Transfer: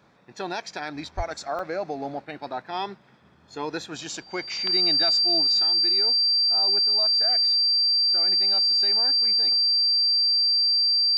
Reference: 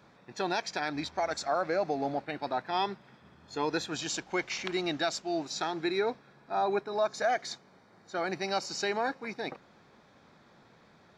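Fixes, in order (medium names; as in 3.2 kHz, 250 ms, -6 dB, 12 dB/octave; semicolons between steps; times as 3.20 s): band-stop 4.7 kHz, Q 30; 1.16–1.28 s: high-pass 140 Hz 24 dB/octave; interpolate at 1.59 s, 2 ms; 5.60 s: gain correction +8 dB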